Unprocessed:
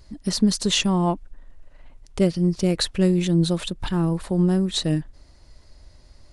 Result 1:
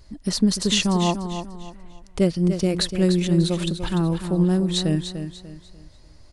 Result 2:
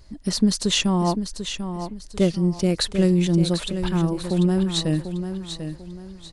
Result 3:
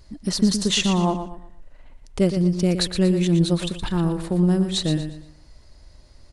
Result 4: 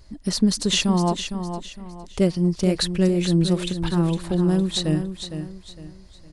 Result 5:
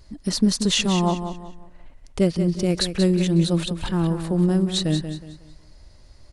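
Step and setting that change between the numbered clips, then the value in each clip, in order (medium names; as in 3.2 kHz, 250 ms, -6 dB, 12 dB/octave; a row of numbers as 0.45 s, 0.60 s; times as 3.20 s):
feedback delay, time: 295 ms, 743 ms, 118 ms, 459 ms, 183 ms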